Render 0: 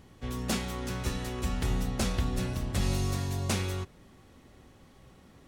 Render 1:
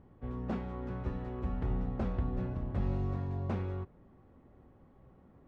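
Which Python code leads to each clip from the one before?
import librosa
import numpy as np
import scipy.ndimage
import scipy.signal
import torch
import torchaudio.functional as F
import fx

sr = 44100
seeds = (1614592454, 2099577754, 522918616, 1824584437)

y = scipy.signal.sosfilt(scipy.signal.butter(2, 1100.0, 'lowpass', fs=sr, output='sos'), x)
y = F.gain(torch.from_numpy(y), -3.5).numpy()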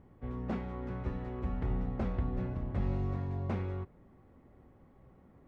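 y = fx.peak_eq(x, sr, hz=2100.0, db=4.5, octaves=0.28)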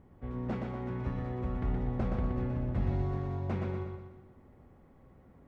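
y = fx.echo_feedback(x, sr, ms=121, feedback_pct=47, wet_db=-4.0)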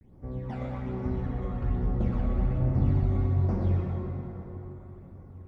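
y = fx.phaser_stages(x, sr, stages=12, low_hz=270.0, high_hz=3200.0, hz=1.2, feedback_pct=50)
y = fx.vibrato(y, sr, rate_hz=0.46, depth_cents=50.0)
y = fx.rev_plate(y, sr, seeds[0], rt60_s=4.2, hf_ratio=0.5, predelay_ms=0, drr_db=-1.5)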